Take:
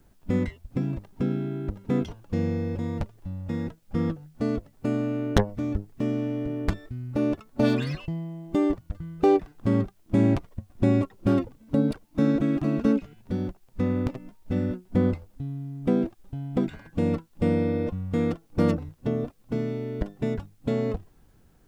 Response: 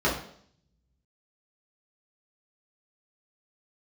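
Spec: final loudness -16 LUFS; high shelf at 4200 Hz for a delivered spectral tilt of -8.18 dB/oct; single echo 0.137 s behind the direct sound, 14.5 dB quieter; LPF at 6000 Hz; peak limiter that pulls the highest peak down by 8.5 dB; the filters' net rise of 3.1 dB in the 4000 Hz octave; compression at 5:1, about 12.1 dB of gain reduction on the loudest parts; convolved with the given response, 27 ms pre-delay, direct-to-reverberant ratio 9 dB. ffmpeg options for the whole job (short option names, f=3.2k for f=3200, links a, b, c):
-filter_complex "[0:a]lowpass=6k,equalizer=f=4k:t=o:g=7,highshelf=f=4.2k:g=-5,acompressor=threshold=-29dB:ratio=5,alimiter=level_in=1.5dB:limit=-24dB:level=0:latency=1,volume=-1.5dB,aecho=1:1:137:0.188,asplit=2[a][b];[1:a]atrim=start_sample=2205,adelay=27[c];[b][c]afir=irnorm=-1:irlink=0,volume=-23.5dB[d];[a][d]amix=inputs=2:normalize=0,volume=20dB"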